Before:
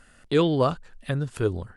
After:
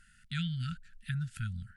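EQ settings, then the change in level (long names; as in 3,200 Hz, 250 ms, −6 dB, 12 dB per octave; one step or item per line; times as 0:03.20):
dynamic equaliser 5,500 Hz, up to −4 dB, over −49 dBFS, Q 1.3
linear-phase brick-wall band-stop 230–1,300 Hz
−6.5 dB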